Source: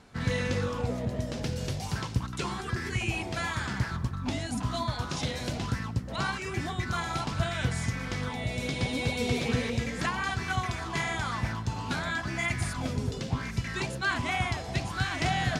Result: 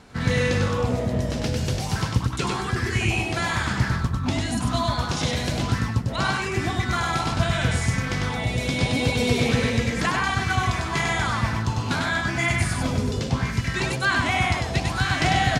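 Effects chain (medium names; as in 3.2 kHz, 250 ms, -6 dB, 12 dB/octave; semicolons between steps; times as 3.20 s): delay 99 ms -3.5 dB; trim +6 dB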